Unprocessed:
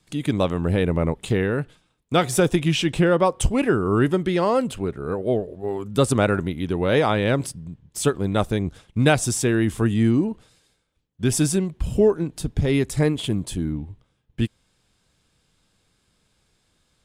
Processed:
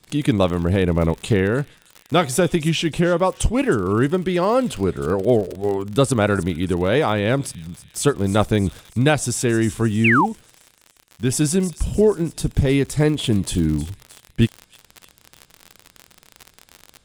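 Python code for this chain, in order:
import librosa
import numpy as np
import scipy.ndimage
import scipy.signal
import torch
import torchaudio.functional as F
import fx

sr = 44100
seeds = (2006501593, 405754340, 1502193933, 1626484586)

p1 = x + fx.echo_wet_highpass(x, sr, ms=312, feedback_pct=51, hz=4400.0, wet_db=-13, dry=0)
p2 = fx.dmg_crackle(p1, sr, seeds[0], per_s=69.0, level_db=-31.0)
p3 = fx.rider(p2, sr, range_db=4, speed_s=0.5)
p4 = fx.spec_paint(p3, sr, seeds[1], shape='fall', start_s=10.04, length_s=0.22, low_hz=740.0, high_hz=2900.0, level_db=-19.0)
y = F.gain(torch.from_numpy(p4), 2.5).numpy()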